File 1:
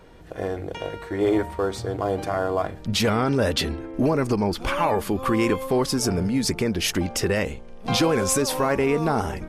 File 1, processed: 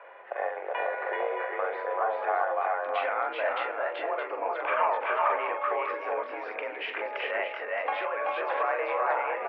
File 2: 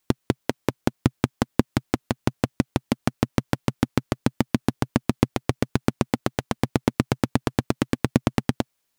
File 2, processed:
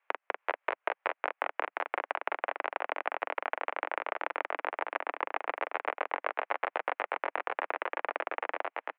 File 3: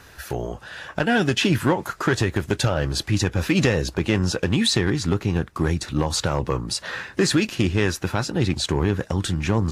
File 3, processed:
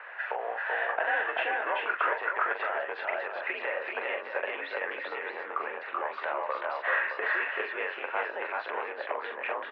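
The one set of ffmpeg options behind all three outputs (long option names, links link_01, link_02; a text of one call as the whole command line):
ffmpeg -i in.wav -af "acompressor=threshold=-28dB:ratio=12,highpass=frequency=530:width_type=q:width=0.5412,highpass=frequency=530:width_type=q:width=1.307,lowpass=frequency=2400:width_type=q:width=0.5176,lowpass=frequency=2400:width_type=q:width=0.7071,lowpass=frequency=2400:width_type=q:width=1.932,afreqshift=55,aecho=1:1:43|382|405|619:0.501|0.668|0.631|0.398,volume=5.5dB" out.wav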